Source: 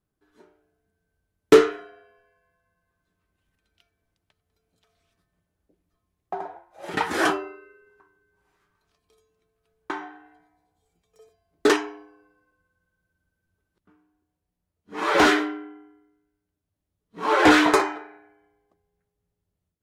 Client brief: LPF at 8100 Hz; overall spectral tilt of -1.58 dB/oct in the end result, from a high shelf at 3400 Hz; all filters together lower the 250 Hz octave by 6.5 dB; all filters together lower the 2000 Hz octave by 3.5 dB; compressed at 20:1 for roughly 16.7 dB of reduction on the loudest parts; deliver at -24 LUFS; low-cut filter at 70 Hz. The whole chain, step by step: HPF 70 Hz; LPF 8100 Hz; bell 250 Hz -9 dB; bell 2000 Hz -3 dB; high shelf 3400 Hz -5.5 dB; compressor 20:1, threshold -27 dBFS; gain +11 dB

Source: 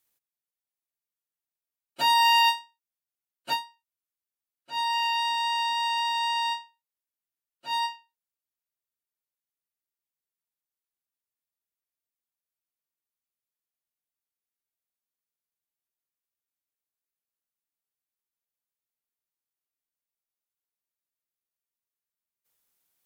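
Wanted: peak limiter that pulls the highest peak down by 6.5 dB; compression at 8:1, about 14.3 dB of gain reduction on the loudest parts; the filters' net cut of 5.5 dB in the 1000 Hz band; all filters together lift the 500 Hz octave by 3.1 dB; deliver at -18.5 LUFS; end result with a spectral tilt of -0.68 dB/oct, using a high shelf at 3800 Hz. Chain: bell 500 Hz +6.5 dB; bell 1000 Hz -7.5 dB; high shelf 3800 Hz +4 dB; compressor 8:1, threshold -34 dBFS; gain +19 dB; limiter -12 dBFS

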